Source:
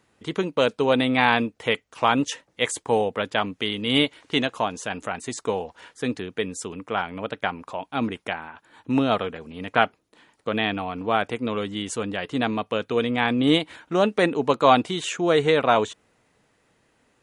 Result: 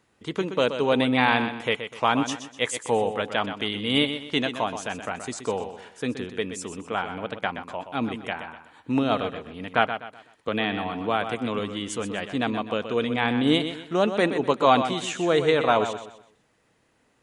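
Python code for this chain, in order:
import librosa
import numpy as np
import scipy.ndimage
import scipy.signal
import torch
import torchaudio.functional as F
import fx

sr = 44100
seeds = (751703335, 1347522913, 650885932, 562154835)

y = fx.echo_feedback(x, sr, ms=125, feedback_pct=34, wet_db=-9.5)
y = fx.band_squash(y, sr, depth_pct=40, at=(10.48, 11.59))
y = y * librosa.db_to_amplitude(-2.0)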